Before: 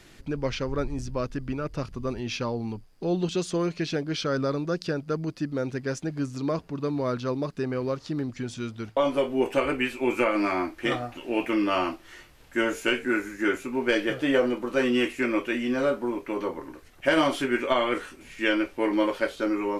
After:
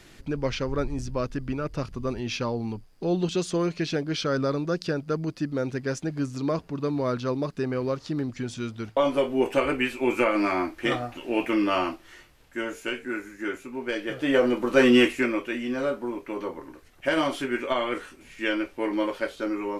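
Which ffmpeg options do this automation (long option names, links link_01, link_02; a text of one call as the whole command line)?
ffmpeg -i in.wav -af "volume=14dB,afade=type=out:start_time=11.66:duration=0.94:silence=0.446684,afade=type=in:start_time=14.03:duration=0.91:silence=0.223872,afade=type=out:start_time=14.94:duration=0.43:silence=0.334965" out.wav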